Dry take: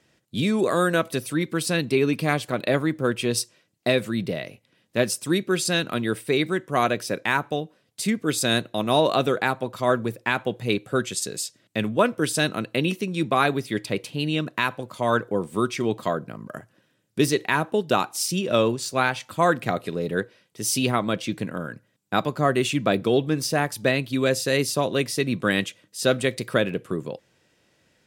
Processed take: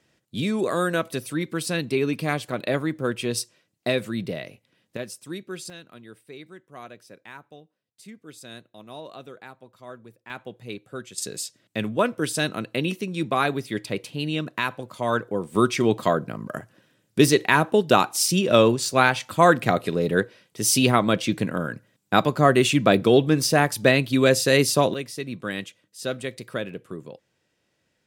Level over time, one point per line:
−2.5 dB
from 0:04.97 −12 dB
from 0:05.70 −20 dB
from 0:10.30 −12 dB
from 0:11.18 −2 dB
from 0:15.55 +4 dB
from 0:24.94 −8 dB

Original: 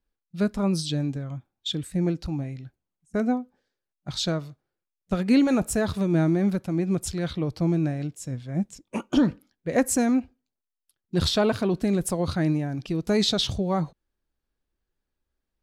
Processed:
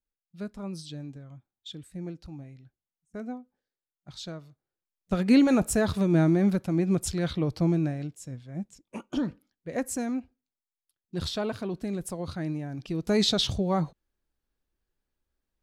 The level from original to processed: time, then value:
0:04.43 −12.5 dB
0:05.23 0 dB
0:07.59 0 dB
0:08.49 −8.5 dB
0:12.49 −8.5 dB
0:13.20 −1 dB

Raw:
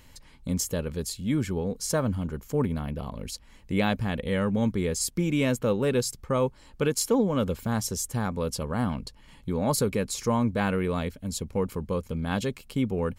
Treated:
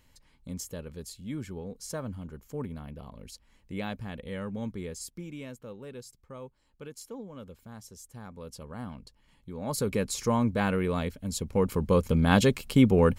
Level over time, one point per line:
0:04.83 −10 dB
0:05.58 −18.5 dB
0:07.93 −18.5 dB
0:08.68 −12 dB
0:09.53 −12 dB
0:09.94 −1 dB
0:11.34 −1 dB
0:12.04 +7 dB

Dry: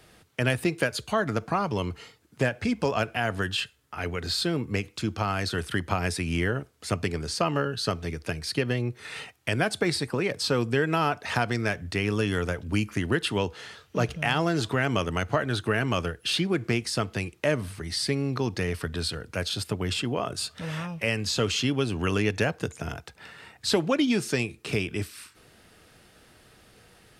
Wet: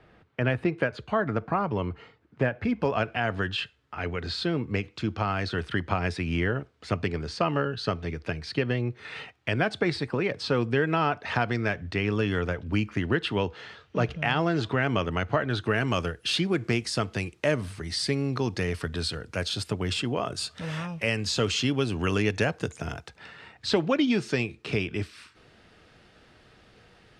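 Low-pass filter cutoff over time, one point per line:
0:02.58 2,100 Hz
0:03.16 3,700 Hz
0:15.47 3,700 Hz
0:15.88 8,600 Hz
0:22.99 8,600 Hz
0:23.40 4,600 Hz

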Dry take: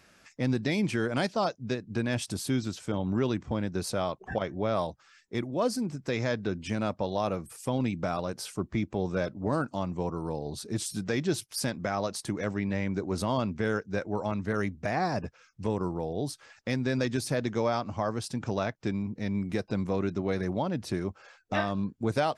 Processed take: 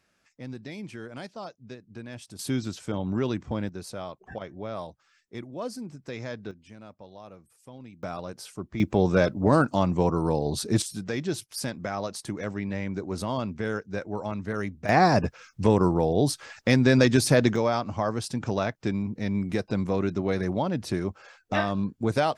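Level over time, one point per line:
−11 dB
from 0:02.39 +0.5 dB
from 0:03.69 −6.5 dB
from 0:06.51 −16.5 dB
from 0:08.03 −4 dB
from 0:08.80 +8.5 dB
from 0:10.82 −1 dB
from 0:14.89 +9.5 dB
from 0:17.56 +3 dB

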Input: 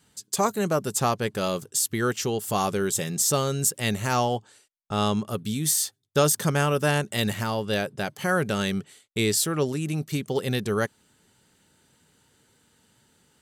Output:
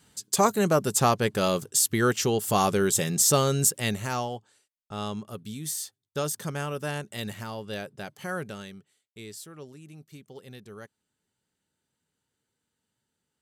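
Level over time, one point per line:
0:03.61 +2 dB
0:04.36 −9 dB
0:08.39 −9 dB
0:08.79 −19 dB

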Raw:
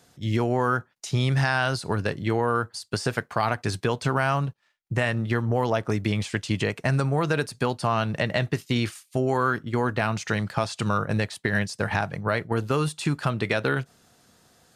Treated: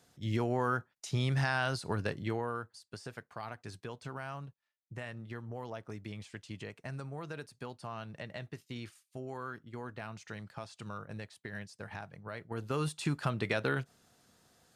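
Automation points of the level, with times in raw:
0:02.18 −8 dB
0:02.83 −18.5 dB
0:12.31 −18.5 dB
0:12.87 −7.5 dB

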